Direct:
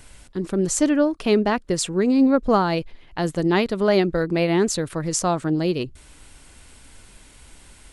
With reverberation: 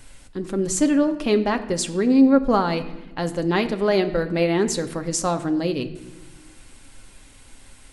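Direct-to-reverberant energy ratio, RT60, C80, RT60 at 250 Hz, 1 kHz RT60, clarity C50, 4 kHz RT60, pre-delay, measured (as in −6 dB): 6.5 dB, 1.1 s, 15.5 dB, 2.0 s, 0.95 s, 14.0 dB, 0.85 s, 4 ms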